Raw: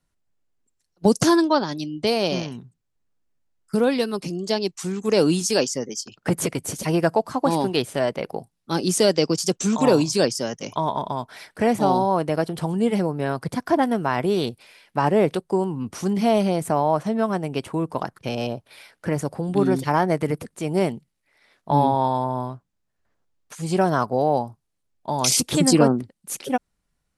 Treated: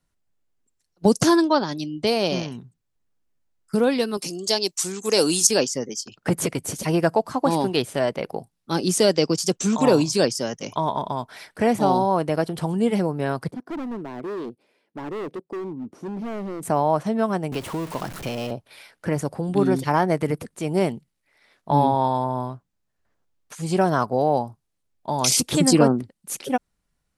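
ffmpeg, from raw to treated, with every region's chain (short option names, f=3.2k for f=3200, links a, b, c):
-filter_complex "[0:a]asettb=1/sr,asplit=3[a][b][c];[a]atrim=end=4.174[d];[b]atrim=start=4.17:end=5.47,asetpts=PTS-STARTPTS,afade=t=in:d=0.004:c=qsin,afade=t=out:st=1.296:d=0.004:c=qsin,bass=f=250:g=-10,treble=f=4k:g=12,bandreject=f=600:w=18[e];[c]atrim=start=5.466[f];[d][e]acrossfade=d=0.004:c1=hsin:c2=qsin[g];[g][f]acrossfade=d=0.004:c1=qsin:c2=hsin,asettb=1/sr,asplit=3[h][i][j];[h]atrim=end=13.514[k];[i]atrim=start=13.51:end=16.63,asetpts=PTS-STARTPTS,afade=t=in:d=0.004:c=qsin,afade=t=out:st=3.116:d=0.004:c=qsin,bandpass=f=320:t=q:w=1.6,aemphasis=mode=production:type=75fm,volume=28dB,asoftclip=hard,volume=-28dB[l];[j]atrim=start=16.626[m];[k][l]acrossfade=d=0.004:c1=hsin:c2=qsin[n];[n][m]acrossfade=d=0.004:c1=qsin:c2=hsin,asettb=1/sr,asplit=3[o][p][q];[o]atrim=end=17.524[r];[p]atrim=start=17.52:end=18.51,asetpts=PTS-STARTPTS,afade=t=in:d=0.004:c=qsin,afade=t=out:st=0.986:d=0.004:c=qsin,aeval=exprs='val(0)+0.5*0.0316*sgn(val(0))':c=same,acrossover=split=600|1300[s][t][u];[s]acompressor=threshold=-27dB:ratio=4[v];[t]acompressor=threshold=-36dB:ratio=4[w];[u]acompressor=threshold=-34dB:ratio=4[x];[v][w][x]amix=inputs=3:normalize=0[y];[q]atrim=start=18.506[z];[r][y]acrossfade=d=0.004:c1=hsin:c2=qsin[aa];[aa][z]acrossfade=d=0.004:c1=qsin:c2=hsin"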